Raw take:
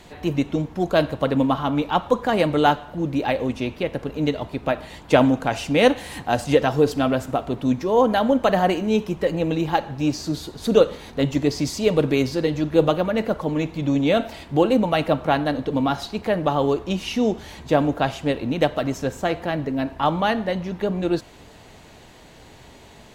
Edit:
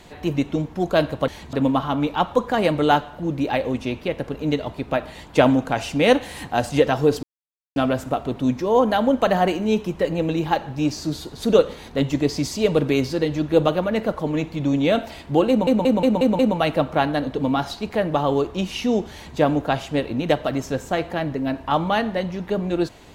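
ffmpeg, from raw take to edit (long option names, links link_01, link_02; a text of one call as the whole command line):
ffmpeg -i in.wav -filter_complex "[0:a]asplit=9[link_01][link_02][link_03][link_04][link_05][link_06][link_07][link_08][link_09];[link_01]atrim=end=1.282[link_10];[link_02]atrim=start=17.438:end=17.692[link_11];[link_03]atrim=start=1.278:end=6.98,asetpts=PTS-STARTPTS,afade=type=out:start_time=5.698:duration=0.004:curve=hsin,apad=pad_dur=0.53[link_12];[link_04]atrim=start=6.98:end=14.892,asetpts=PTS-STARTPTS,afade=type=in:duration=0.004:curve=hsin[link_13];[link_05]atrim=start=14.708:end=14.892[link_14];[link_06]atrim=start=14.708:end=14.892[link_15];[link_07]atrim=start=14.708:end=14.892[link_16];[link_08]atrim=start=14.708:end=14.892[link_17];[link_09]atrim=start=14.708[link_18];[link_10][link_11]acrossfade=duration=0.004:curve1=hsin:curve2=hsin[link_19];[link_12][link_13]concat=n=2:v=0:a=1[link_20];[link_19][link_20]acrossfade=duration=0.004:curve1=hsin:curve2=hsin[link_21];[link_21][link_14]acrossfade=duration=0.004:curve1=hsin:curve2=hsin[link_22];[link_22][link_15]acrossfade=duration=0.004:curve1=hsin:curve2=hsin[link_23];[link_23][link_16]acrossfade=duration=0.004:curve1=hsin:curve2=hsin[link_24];[link_24][link_17]acrossfade=duration=0.004:curve1=hsin:curve2=hsin[link_25];[link_25][link_18]acrossfade=duration=0.004:curve1=hsin:curve2=hsin" out.wav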